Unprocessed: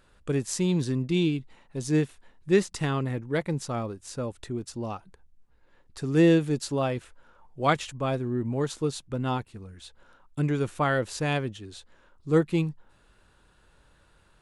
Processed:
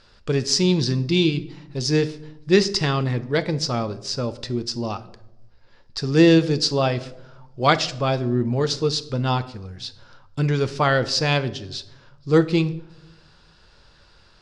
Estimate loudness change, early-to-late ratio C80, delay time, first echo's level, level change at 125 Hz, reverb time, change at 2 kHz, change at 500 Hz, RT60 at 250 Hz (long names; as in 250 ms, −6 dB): +6.0 dB, 19.0 dB, no echo audible, no echo audible, +6.0 dB, 0.90 s, +7.0 dB, +6.0 dB, 1.1 s